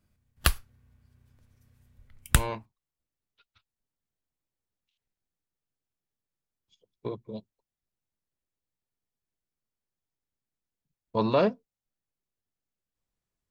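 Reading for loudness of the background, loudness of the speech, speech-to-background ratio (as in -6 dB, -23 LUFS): -28.5 LUFS, -30.5 LUFS, -2.0 dB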